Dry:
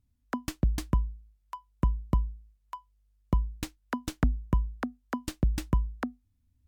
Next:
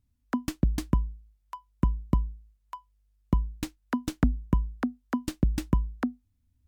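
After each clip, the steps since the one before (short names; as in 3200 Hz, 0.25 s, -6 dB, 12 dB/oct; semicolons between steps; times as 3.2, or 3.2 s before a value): dynamic EQ 250 Hz, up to +6 dB, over -44 dBFS, Q 1.1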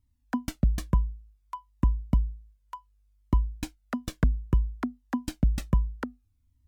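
cascading flanger falling 0.61 Hz; gain +3.5 dB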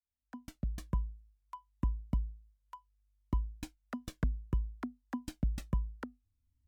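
opening faded in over 1.01 s; gain -9 dB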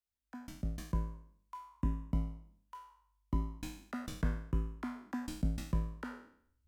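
spectral trails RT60 0.61 s; gain -2.5 dB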